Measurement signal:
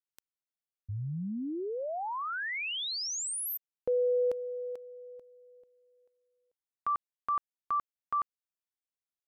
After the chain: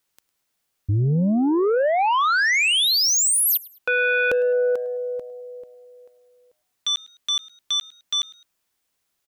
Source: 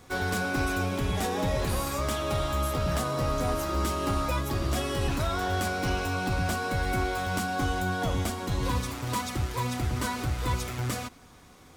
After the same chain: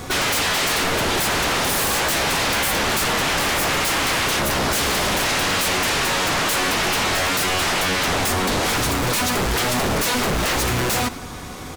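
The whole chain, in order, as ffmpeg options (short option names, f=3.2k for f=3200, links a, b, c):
-filter_complex "[0:a]aeval=exprs='0.133*sin(PI/2*6.31*val(0)/0.133)':c=same,asplit=2[a][b];[b]asplit=2[c][d];[c]adelay=105,afreqshift=120,volume=-22dB[e];[d]adelay=210,afreqshift=240,volume=-31.1dB[f];[e][f]amix=inputs=2:normalize=0[g];[a][g]amix=inputs=2:normalize=0"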